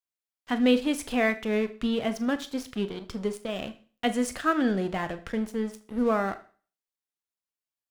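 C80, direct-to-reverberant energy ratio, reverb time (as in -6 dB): 20.0 dB, 10.0 dB, 0.40 s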